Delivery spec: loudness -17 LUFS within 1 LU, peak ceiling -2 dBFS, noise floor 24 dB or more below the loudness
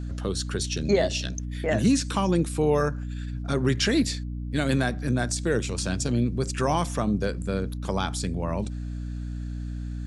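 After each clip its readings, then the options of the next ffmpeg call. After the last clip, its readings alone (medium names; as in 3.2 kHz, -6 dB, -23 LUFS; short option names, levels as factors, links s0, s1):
hum 60 Hz; highest harmonic 300 Hz; hum level -30 dBFS; loudness -26.5 LUFS; peak level -10.0 dBFS; loudness target -17.0 LUFS
-> -af "bandreject=f=60:t=h:w=4,bandreject=f=120:t=h:w=4,bandreject=f=180:t=h:w=4,bandreject=f=240:t=h:w=4,bandreject=f=300:t=h:w=4"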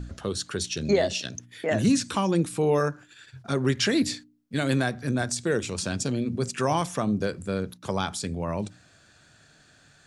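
hum not found; loudness -27.0 LUFS; peak level -11.0 dBFS; loudness target -17.0 LUFS
-> -af "volume=3.16,alimiter=limit=0.794:level=0:latency=1"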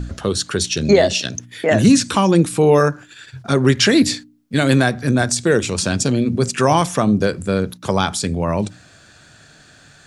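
loudness -17.0 LUFS; peak level -2.0 dBFS; noise floor -48 dBFS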